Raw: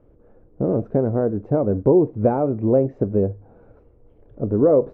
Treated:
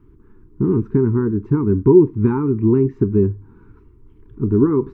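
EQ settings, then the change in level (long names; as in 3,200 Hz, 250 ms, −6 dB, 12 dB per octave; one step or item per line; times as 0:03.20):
elliptic band-stop filter 400–950 Hz, stop band 40 dB
+6.0 dB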